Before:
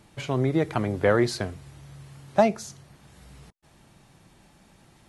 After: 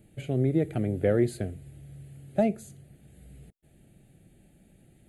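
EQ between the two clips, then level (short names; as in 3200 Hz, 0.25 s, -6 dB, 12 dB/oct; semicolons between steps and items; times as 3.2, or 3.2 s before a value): band shelf 2100 Hz -9 dB 2.4 oct; fixed phaser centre 2400 Hz, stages 4; 0.0 dB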